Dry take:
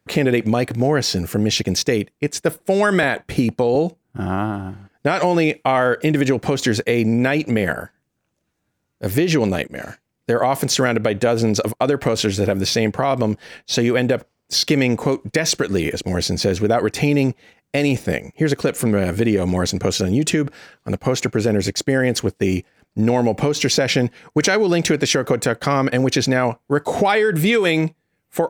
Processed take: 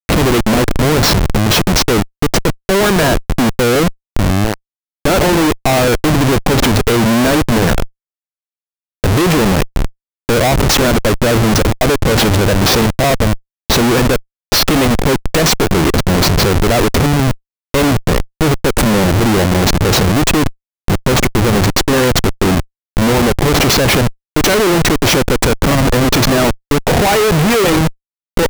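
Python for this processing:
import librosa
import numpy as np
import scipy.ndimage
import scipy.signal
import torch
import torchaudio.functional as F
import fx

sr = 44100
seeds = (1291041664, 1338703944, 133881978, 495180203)

y = fx.schmitt(x, sr, flips_db=-21.5)
y = y * librosa.db_to_amplitude(8.5)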